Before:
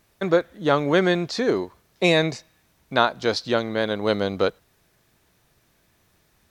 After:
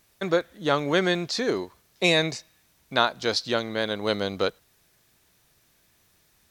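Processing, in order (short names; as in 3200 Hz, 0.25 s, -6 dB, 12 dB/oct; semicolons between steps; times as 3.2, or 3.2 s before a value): high shelf 2300 Hz +8 dB; gain -4.5 dB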